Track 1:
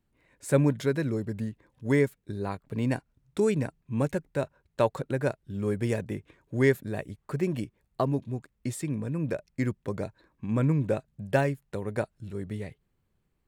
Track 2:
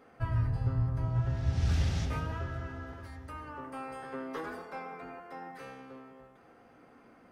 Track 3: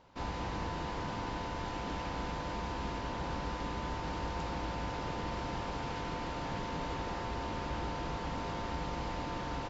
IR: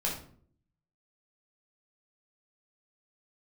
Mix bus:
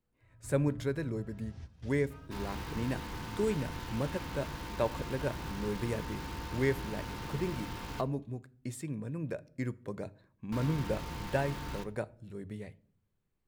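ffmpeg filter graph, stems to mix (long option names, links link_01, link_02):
-filter_complex "[0:a]bandreject=frequency=50:width_type=h:width=6,bandreject=frequency=100:width_type=h:width=6,volume=-7.5dB,asplit=3[link_01][link_02][link_03];[link_02]volume=-22dB[link_04];[1:a]volume=-17.5dB,asplit=2[link_05][link_06];[link_06]volume=-23dB[link_07];[2:a]equalizer=frequency=630:width=2.3:gain=-13.5,bandreject=frequency=201:width_type=h:width=4,bandreject=frequency=402:width_type=h:width=4,bandreject=frequency=603:width_type=h:width=4,bandreject=frequency=804:width_type=h:width=4,bandreject=frequency=1005:width_type=h:width=4,bandreject=frequency=1206:width_type=h:width=4,bandreject=frequency=1407:width_type=h:width=4,bandreject=frequency=1608:width_type=h:width=4,bandreject=frequency=1809:width_type=h:width=4,bandreject=frequency=2010:width_type=h:width=4,bandreject=frequency=2211:width_type=h:width=4,bandreject=frequency=2412:width_type=h:width=4,bandreject=frequency=2613:width_type=h:width=4,bandreject=frequency=2814:width_type=h:width=4,bandreject=frequency=3015:width_type=h:width=4,bandreject=frequency=3216:width_type=h:width=4,bandreject=frequency=3417:width_type=h:width=4,bandreject=frequency=3618:width_type=h:width=4,bandreject=frequency=3819:width_type=h:width=4,bandreject=frequency=4020:width_type=h:width=4,bandreject=frequency=4221:width_type=h:width=4,bandreject=frequency=4422:width_type=h:width=4,bandreject=frequency=4623:width_type=h:width=4,bandreject=frequency=4824:width_type=h:width=4,bandreject=frequency=5025:width_type=h:width=4,bandreject=frequency=5226:width_type=h:width=4,bandreject=frequency=5427:width_type=h:width=4,bandreject=frequency=5628:width_type=h:width=4,bandreject=frequency=5829:width_type=h:width=4,bandreject=frequency=6030:width_type=h:width=4,bandreject=frequency=6231:width_type=h:width=4,bandreject=frequency=6432:width_type=h:width=4,bandreject=frequency=6633:width_type=h:width=4,bandreject=frequency=6834:width_type=h:width=4,bandreject=frequency=7035:width_type=h:width=4,bandreject=frequency=7236:width_type=h:width=4,bandreject=frequency=7437:width_type=h:width=4,bandreject=frequency=7638:width_type=h:width=4,acrusher=bits=9:dc=4:mix=0:aa=0.000001,adelay=2150,volume=-2.5dB,asplit=3[link_08][link_09][link_10];[link_08]atrim=end=8.01,asetpts=PTS-STARTPTS,afade=type=out:start_time=8.006:duration=0.004:curve=hsin[link_11];[link_09]atrim=start=8.01:end=10.52,asetpts=PTS-STARTPTS,volume=0[link_12];[link_10]atrim=start=10.52,asetpts=PTS-STARTPTS,afade=type=in:duration=0.004:curve=hsin[link_13];[link_11][link_12][link_13]concat=n=3:v=0:a=1,asplit=2[link_14][link_15];[link_15]volume=-15dB[link_16];[link_03]apad=whole_len=322682[link_17];[link_05][link_17]sidechaingate=range=-33dB:threshold=-57dB:ratio=16:detection=peak[link_18];[3:a]atrim=start_sample=2205[link_19];[link_04][link_07][link_16]amix=inputs=3:normalize=0[link_20];[link_20][link_19]afir=irnorm=-1:irlink=0[link_21];[link_01][link_18][link_14][link_21]amix=inputs=4:normalize=0"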